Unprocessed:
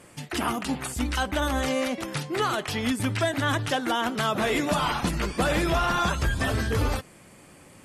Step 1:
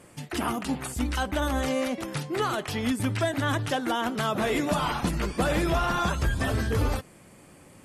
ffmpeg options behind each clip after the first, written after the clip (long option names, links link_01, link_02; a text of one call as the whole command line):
ffmpeg -i in.wav -af "equalizer=frequency=3400:width=0.3:gain=-3.5" out.wav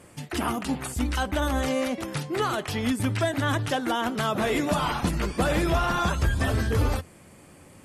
ffmpeg -i in.wav -af "equalizer=frequency=83:width_type=o:width=0.29:gain=6,volume=1dB" out.wav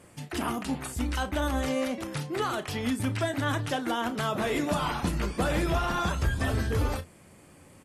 ffmpeg -i in.wav -filter_complex "[0:a]asplit=2[link_01][link_02];[link_02]adelay=34,volume=-12dB[link_03];[link_01][link_03]amix=inputs=2:normalize=0,volume=-3.5dB" out.wav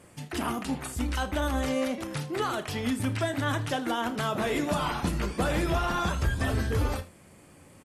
ffmpeg -i in.wav -af "aecho=1:1:80:0.133" out.wav